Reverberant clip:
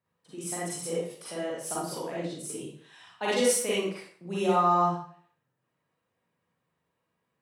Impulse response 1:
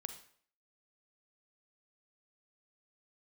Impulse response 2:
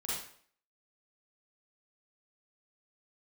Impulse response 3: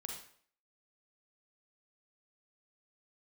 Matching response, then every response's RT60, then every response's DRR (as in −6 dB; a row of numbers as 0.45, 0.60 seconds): 2; 0.55, 0.55, 0.55 seconds; 8.0, −8.0, 0.5 decibels